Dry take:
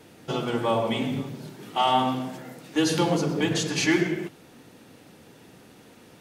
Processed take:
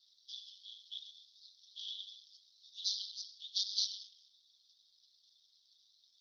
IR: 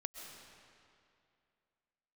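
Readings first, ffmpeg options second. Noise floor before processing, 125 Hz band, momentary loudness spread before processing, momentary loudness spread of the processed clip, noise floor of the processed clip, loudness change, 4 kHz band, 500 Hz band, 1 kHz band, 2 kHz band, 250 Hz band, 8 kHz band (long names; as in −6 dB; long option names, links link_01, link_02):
−52 dBFS, below −40 dB, 13 LU, 21 LU, −72 dBFS, −14.0 dB, −6.5 dB, below −40 dB, below −40 dB, below −40 dB, below −40 dB, −12.0 dB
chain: -af "asuperpass=centerf=4500:order=12:qfactor=2,tremolo=f=200:d=0.788,volume=4dB" -ar 48000 -c:a libopus -b:a 10k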